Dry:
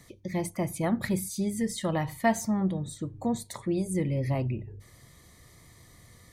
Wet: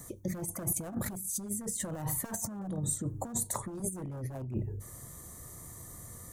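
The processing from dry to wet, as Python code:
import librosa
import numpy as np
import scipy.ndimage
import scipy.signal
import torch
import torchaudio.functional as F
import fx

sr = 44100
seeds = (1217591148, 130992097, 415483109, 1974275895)

y = 10.0 ** (-23.5 / 20.0) * (np.abs((x / 10.0 ** (-23.5 / 20.0) + 3.0) % 4.0 - 2.0) - 1.0)
y = fx.high_shelf(y, sr, hz=5200.0, db=10.0)
y = fx.over_compress(y, sr, threshold_db=-34.0, ratio=-0.5)
y = fx.band_shelf(y, sr, hz=3200.0, db=-13.5, octaves=1.7)
y = fx.band_squash(y, sr, depth_pct=40, at=(1.79, 3.8))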